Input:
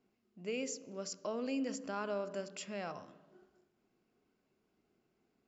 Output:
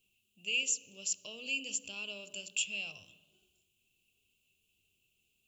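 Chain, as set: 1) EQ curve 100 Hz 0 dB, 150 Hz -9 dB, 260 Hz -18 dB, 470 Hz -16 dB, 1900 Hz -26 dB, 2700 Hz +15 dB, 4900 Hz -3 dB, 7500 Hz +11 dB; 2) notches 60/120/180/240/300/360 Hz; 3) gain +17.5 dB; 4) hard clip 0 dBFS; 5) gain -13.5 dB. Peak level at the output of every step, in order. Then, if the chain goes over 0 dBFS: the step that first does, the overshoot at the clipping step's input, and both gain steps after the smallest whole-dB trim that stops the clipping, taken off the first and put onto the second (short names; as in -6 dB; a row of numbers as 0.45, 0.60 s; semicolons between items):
-23.0, -23.0, -5.5, -5.5, -19.0 dBFS; no overload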